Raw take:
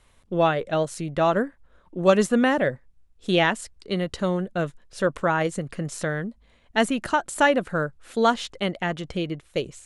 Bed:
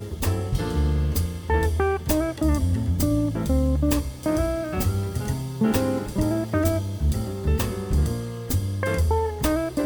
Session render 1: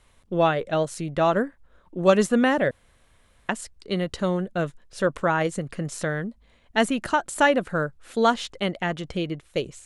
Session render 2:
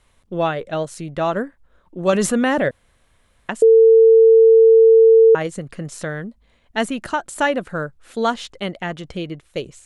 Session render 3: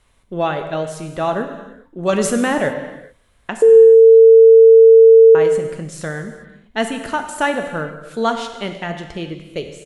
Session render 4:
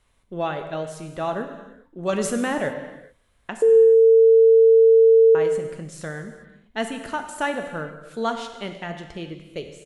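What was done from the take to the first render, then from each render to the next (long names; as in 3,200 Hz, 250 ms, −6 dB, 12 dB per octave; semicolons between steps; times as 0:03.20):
0:02.71–0:03.49: fill with room tone
0:02.13–0:02.69: envelope flattener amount 70%; 0:03.62–0:05.35: beep over 450 Hz −6.5 dBFS
slap from a distant wall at 29 metres, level −28 dB; reverb whose tail is shaped and stops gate 450 ms falling, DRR 5.5 dB
level −6.5 dB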